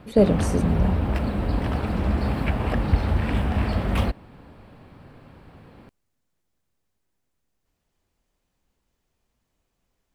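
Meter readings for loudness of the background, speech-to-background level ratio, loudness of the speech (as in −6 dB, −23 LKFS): −25.0 LKFS, 1.0 dB, −24.0 LKFS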